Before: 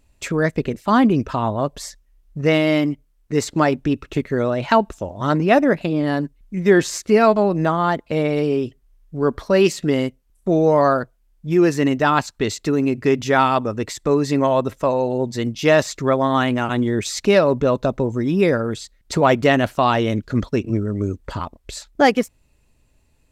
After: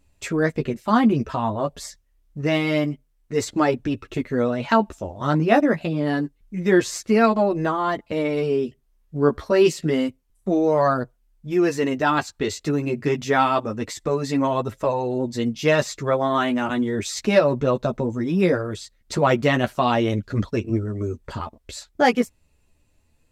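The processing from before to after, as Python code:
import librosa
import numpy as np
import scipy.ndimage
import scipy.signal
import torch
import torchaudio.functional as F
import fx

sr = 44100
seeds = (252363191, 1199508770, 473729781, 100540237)

y = fx.chorus_voices(x, sr, voices=2, hz=0.27, base_ms=11, depth_ms=2.8, mix_pct=40)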